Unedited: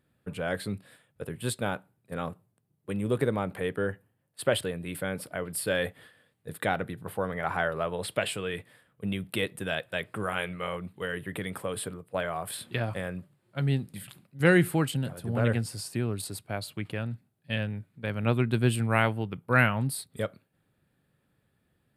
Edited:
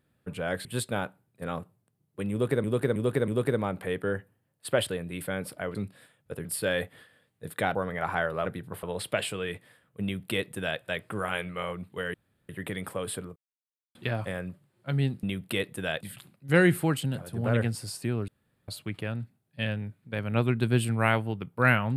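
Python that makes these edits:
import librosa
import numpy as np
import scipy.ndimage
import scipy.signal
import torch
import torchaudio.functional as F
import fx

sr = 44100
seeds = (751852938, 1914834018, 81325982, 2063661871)

y = fx.edit(x, sr, fx.move(start_s=0.65, length_s=0.7, to_s=5.49),
    fx.repeat(start_s=3.02, length_s=0.32, count=4),
    fx.move(start_s=6.79, length_s=0.38, to_s=7.87),
    fx.duplicate(start_s=9.06, length_s=0.78, to_s=13.92),
    fx.insert_room_tone(at_s=11.18, length_s=0.35),
    fx.silence(start_s=12.05, length_s=0.59),
    fx.room_tone_fill(start_s=16.19, length_s=0.4), tone=tone)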